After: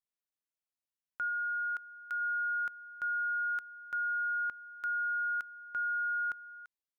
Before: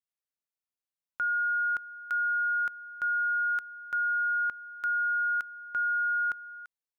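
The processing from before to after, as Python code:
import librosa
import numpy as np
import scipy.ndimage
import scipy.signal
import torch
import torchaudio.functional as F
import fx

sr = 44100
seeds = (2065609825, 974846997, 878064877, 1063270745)

y = fx.low_shelf(x, sr, hz=490.0, db=-11.0, at=(1.28, 2.2), fade=0.02)
y = F.gain(torch.from_numpy(y), -5.0).numpy()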